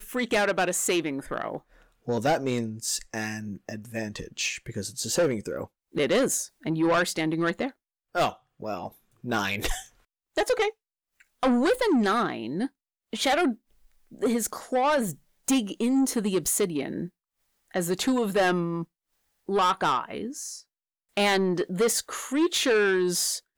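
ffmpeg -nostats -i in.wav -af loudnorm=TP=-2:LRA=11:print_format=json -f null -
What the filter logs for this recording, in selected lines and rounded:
"input_i" : "-26.4",
"input_tp" : "-15.9",
"input_lra" : "4.8",
"input_thresh" : "-36.9",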